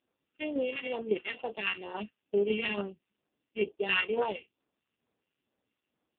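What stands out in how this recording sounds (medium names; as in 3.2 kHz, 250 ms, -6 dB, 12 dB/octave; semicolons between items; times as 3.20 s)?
a buzz of ramps at a fixed pitch in blocks of 16 samples; phasing stages 2, 2.2 Hz, lowest notch 640–2300 Hz; tremolo saw down 3.6 Hz, depth 55%; AMR-NB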